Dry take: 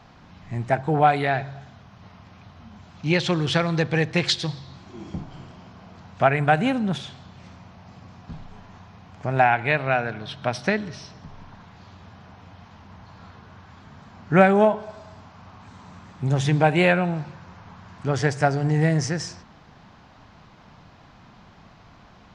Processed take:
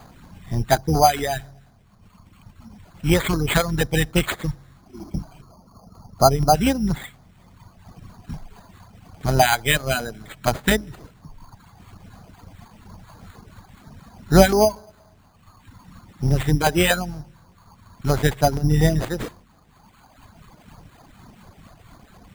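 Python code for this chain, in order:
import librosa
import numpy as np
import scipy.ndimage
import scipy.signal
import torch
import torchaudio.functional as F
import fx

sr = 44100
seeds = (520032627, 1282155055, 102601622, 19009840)

p1 = fx.octave_divider(x, sr, octaves=2, level_db=-5.0)
p2 = fx.spec_box(p1, sr, start_s=5.42, length_s=1.12, low_hz=1400.0, high_hz=5100.0, gain_db=-18)
p3 = fx.dereverb_blind(p2, sr, rt60_s=2.0)
p4 = fx.rider(p3, sr, range_db=4, speed_s=2.0)
p5 = p3 + (p4 * librosa.db_to_amplitude(0.0))
p6 = fx.filter_lfo_notch(p5, sr, shape='saw_down', hz=4.2, low_hz=420.0, high_hz=5900.0, q=0.84)
p7 = np.repeat(p6[::8], 8)[:len(p6)]
y = p7 * librosa.db_to_amplitude(-1.5)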